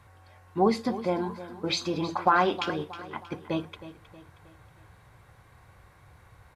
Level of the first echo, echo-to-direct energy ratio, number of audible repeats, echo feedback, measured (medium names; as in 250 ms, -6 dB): -14.5 dB, -13.5 dB, 3, 45%